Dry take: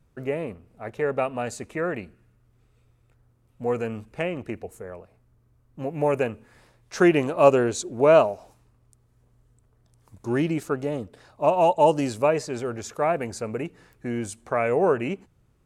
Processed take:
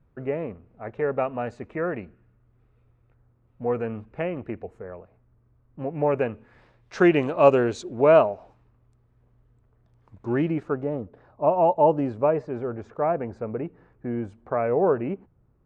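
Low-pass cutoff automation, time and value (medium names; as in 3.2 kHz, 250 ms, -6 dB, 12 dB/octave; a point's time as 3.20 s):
6.00 s 1.9 kHz
6.96 s 3.8 kHz
7.76 s 3.8 kHz
8.24 s 2.4 kHz
10.30 s 2.4 kHz
10.93 s 1.2 kHz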